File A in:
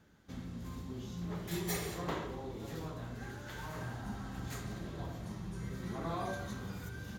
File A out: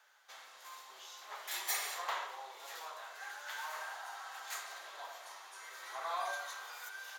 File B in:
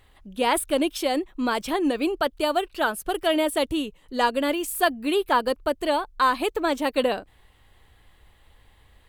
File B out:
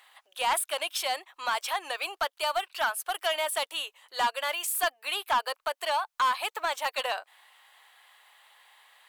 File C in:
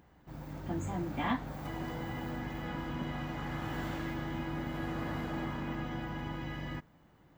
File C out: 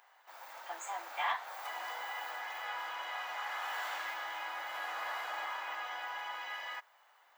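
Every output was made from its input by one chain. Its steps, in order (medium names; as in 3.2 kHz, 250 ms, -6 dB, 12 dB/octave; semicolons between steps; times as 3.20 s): inverse Chebyshev high-pass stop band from 220 Hz, stop band 60 dB; in parallel at +1 dB: compression, threshold -36 dBFS; on the sum: saturation -18 dBFS; trim -1.5 dB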